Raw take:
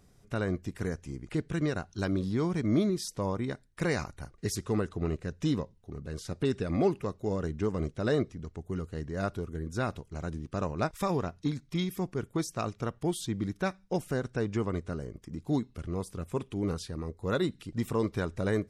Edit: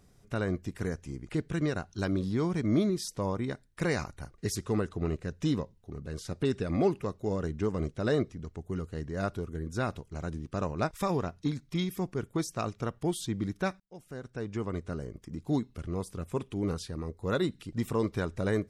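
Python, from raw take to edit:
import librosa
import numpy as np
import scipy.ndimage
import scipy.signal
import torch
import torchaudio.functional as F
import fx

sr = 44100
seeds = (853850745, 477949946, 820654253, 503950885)

y = fx.edit(x, sr, fx.fade_in_span(start_s=13.8, length_s=1.19), tone=tone)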